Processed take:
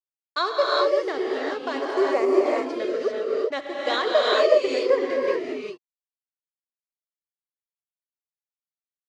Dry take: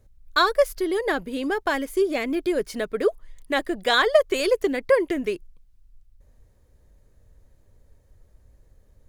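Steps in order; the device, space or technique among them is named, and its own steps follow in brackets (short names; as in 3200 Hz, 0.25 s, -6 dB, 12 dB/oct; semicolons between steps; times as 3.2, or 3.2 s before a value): blown loudspeaker (crossover distortion -37 dBFS; speaker cabinet 200–5700 Hz, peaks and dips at 210 Hz -8 dB, 320 Hz -7 dB, 870 Hz -5 dB, 1600 Hz -8 dB, 2400 Hz -4 dB, 3500 Hz -5 dB); 1.76–2.39 EQ curve 200 Hz 0 dB, 1100 Hz +12 dB, 3400 Hz -7 dB, 9800 Hz +9 dB; non-linear reverb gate 0.42 s rising, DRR -3.5 dB; gain -2 dB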